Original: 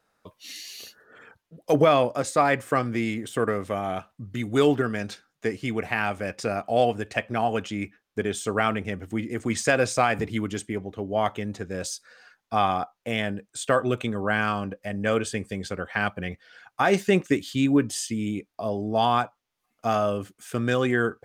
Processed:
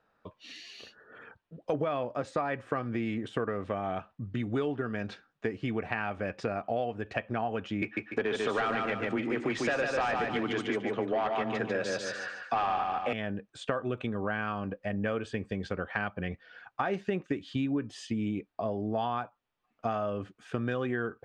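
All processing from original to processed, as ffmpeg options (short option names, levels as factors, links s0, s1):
-filter_complex "[0:a]asettb=1/sr,asplit=3[s0][s1][s2];[s0]atrim=end=7.824[s3];[s1]atrim=start=7.82:end=13.13,asetpts=PTS-STARTPTS,afade=t=in:d=0.004:c=qsin,afade=t=out:st=5.306:d=0.004:c=qsin,afreqshift=14,asplit=2[s4][s5];[s5]highpass=f=720:p=1,volume=10,asoftclip=type=tanh:threshold=0.376[s6];[s4][s6]amix=inputs=2:normalize=0,lowpass=f=5800:p=1,volume=0.501,aecho=1:1:146|292|438|584:0.631|0.208|0.0687|0.0227,atrim=end_sample=234171[s7];[s2]atrim=start=13.126[s8];[s3][s7]acrossfade=d=0.004:c1=hsin:c2=qsin[s9];[s9][s8]acrossfade=d=0.004:c1=qsin:c2=hsin,lowpass=2800,bandreject=f=2100:w=14,acompressor=threshold=0.0398:ratio=6"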